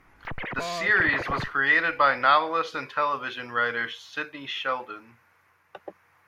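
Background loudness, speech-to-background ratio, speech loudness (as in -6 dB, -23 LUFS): -34.0 LUFS, 9.5 dB, -24.5 LUFS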